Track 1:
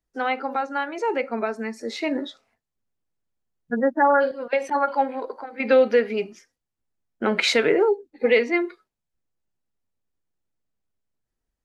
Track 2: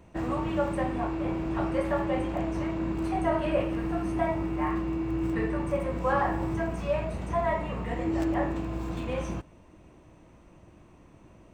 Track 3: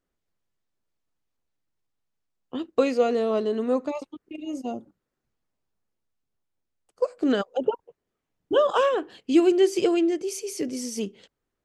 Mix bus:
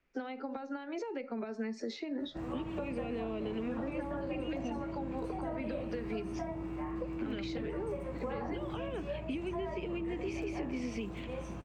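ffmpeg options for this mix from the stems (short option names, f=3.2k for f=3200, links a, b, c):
-filter_complex "[0:a]lowpass=f=6k:w=0.5412,lowpass=f=6k:w=1.3066,acompressor=threshold=-27dB:ratio=6,volume=0.5dB[a];[1:a]adelay=2200,volume=-8dB[b];[2:a]acompressor=threshold=-28dB:ratio=6,lowpass=f=2.4k:t=q:w=5.5,volume=1.5dB[c];[a][c]amix=inputs=2:normalize=0,acrossover=split=290|3000[d][e][f];[e]acompressor=threshold=-36dB:ratio=6[g];[d][g][f]amix=inputs=3:normalize=0,alimiter=level_in=1.5dB:limit=-24dB:level=0:latency=1:release=218,volume=-1.5dB,volume=0dB[h];[b][h]amix=inputs=2:normalize=0,acrossover=split=250|650[i][j][k];[i]acompressor=threshold=-41dB:ratio=4[l];[j]acompressor=threshold=-38dB:ratio=4[m];[k]acompressor=threshold=-47dB:ratio=4[n];[l][m][n]amix=inputs=3:normalize=0"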